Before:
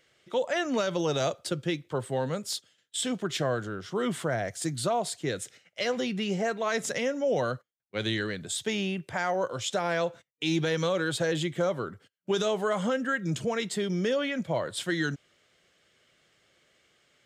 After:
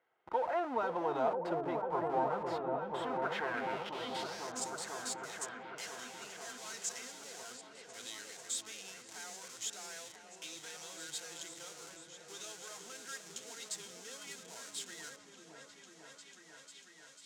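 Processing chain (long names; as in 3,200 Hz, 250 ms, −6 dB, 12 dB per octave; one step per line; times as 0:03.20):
high-pass filter 68 Hz 6 dB per octave
high-shelf EQ 3,200 Hz −11.5 dB
notch comb filter 580 Hz
in parallel at −3.5 dB: comparator with hysteresis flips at −46.5 dBFS
on the sum: band-pass filter sweep 900 Hz → 6,900 Hz, 0:02.93–0:04.61
echo whose low-pass opens from repeat to repeat 495 ms, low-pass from 400 Hz, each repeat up 1 octave, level 0 dB
level +2 dB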